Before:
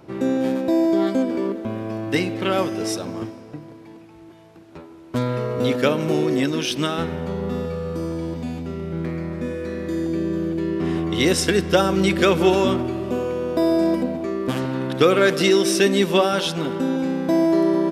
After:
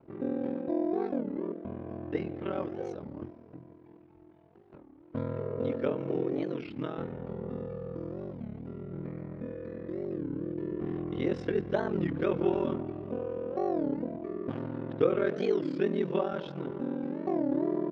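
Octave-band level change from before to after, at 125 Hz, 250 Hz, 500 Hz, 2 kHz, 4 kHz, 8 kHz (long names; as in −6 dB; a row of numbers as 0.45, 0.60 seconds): −11.5 dB, −11.5 dB, −11.0 dB, −18.0 dB, −26.0 dB, below −35 dB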